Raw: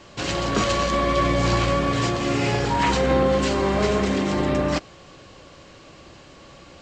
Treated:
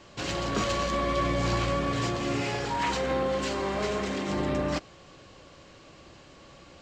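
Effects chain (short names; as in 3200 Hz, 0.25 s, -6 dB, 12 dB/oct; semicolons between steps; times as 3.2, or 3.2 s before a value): 2.42–4.29 low shelf 320 Hz -6.5 dB; in parallel at -10.5 dB: hard clip -25 dBFS, distortion -7 dB; on the sum: gain -7.5 dB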